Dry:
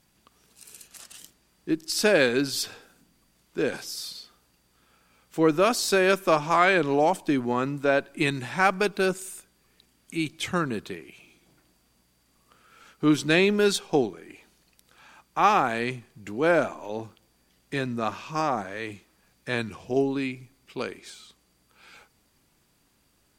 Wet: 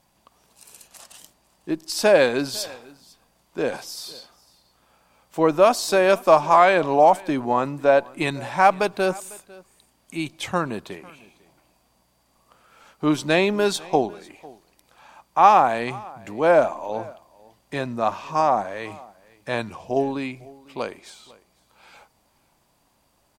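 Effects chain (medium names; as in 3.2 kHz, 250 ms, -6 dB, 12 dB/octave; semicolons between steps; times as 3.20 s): high-order bell 770 Hz +8.5 dB 1.2 oct; delay 500 ms -23 dB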